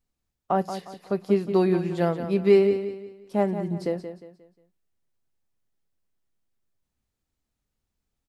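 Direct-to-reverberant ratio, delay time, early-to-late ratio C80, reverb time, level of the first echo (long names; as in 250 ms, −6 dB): no reverb audible, 178 ms, no reverb audible, no reverb audible, −10.0 dB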